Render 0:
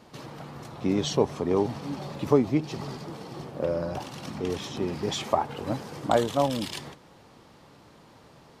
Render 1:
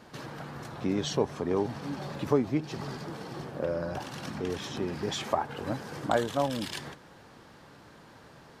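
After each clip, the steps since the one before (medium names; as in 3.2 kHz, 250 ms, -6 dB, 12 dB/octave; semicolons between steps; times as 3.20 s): peaking EQ 1.6 kHz +7.5 dB 0.38 oct; in parallel at -1 dB: compression, threshold -35 dBFS, peak gain reduction 19 dB; on the sum: trim -5.5 dB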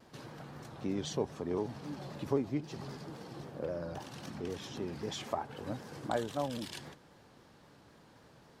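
peaking EQ 1.5 kHz -3.5 dB 1.7 oct; vibrato with a chosen wave saw down 3.8 Hz, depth 100 cents; trim -6 dB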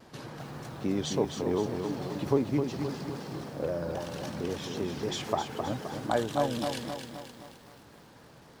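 bit-crushed delay 261 ms, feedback 55%, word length 10-bit, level -6 dB; trim +5.5 dB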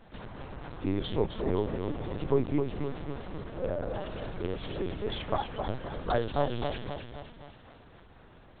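LPC vocoder at 8 kHz pitch kept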